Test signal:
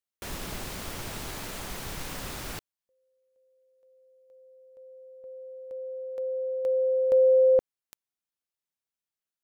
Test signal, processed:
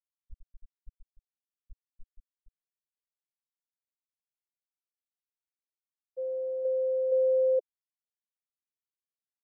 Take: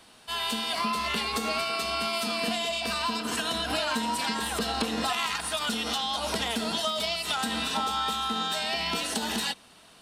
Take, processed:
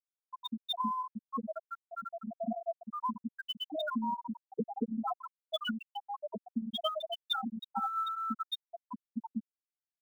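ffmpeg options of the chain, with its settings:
ffmpeg -i in.wav -filter_complex "[0:a]afftfilt=real='re*gte(hypot(re,im),0.224)':imag='im*gte(hypot(re,im),0.224)':win_size=1024:overlap=0.75,adynamicequalizer=threshold=0.00141:dfrequency=4100:dqfactor=1.7:tfrequency=4100:tqfactor=1.7:attack=5:release=100:ratio=0.438:range=3.5:mode=boostabove:tftype=bell,acrossover=split=450|1800[link_01][link_02][link_03];[link_02]acompressor=threshold=-34dB:ratio=6:attack=51:release=268:knee=1[link_04];[link_03]acrusher=bits=5:mode=log:mix=0:aa=0.000001[link_05];[link_01][link_04][link_05]amix=inputs=3:normalize=0" out.wav

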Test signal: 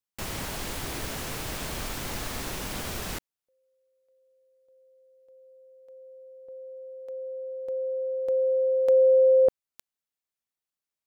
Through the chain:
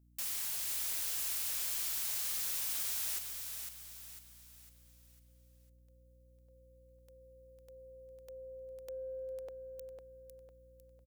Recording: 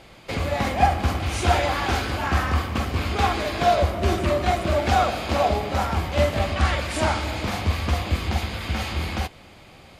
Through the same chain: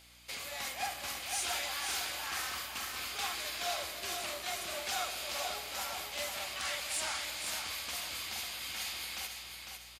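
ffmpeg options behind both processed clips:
ffmpeg -i in.wav -filter_complex "[0:a]aderivative,aeval=exprs='val(0)+0.000631*(sin(2*PI*60*n/s)+sin(2*PI*2*60*n/s)/2+sin(2*PI*3*60*n/s)/3+sin(2*PI*4*60*n/s)/4+sin(2*PI*5*60*n/s)/5)':channel_layout=same,asoftclip=type=tanh:threshold=-24.5dB,asplit=2[link_01][link_02];[link_02]aecho=0:1:502|1004|1506|2008|2510:0.501|0.205|0.0842|0.0345|0.0142[link_03];[link_01][link_03]amix=inputs=2:normalize=0" out.wav

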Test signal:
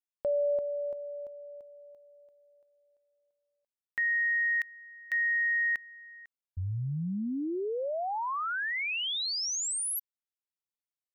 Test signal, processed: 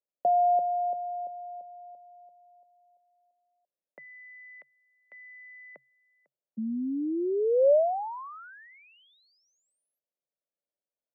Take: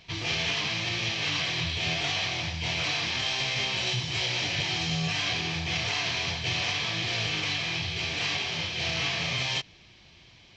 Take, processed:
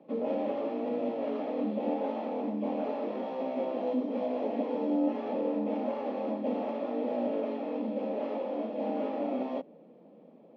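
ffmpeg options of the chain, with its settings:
ffmpeg -i in.wav -af "afreqshift=130,lowpass=frequency=580:width_type=q:width=4.9" out.wav

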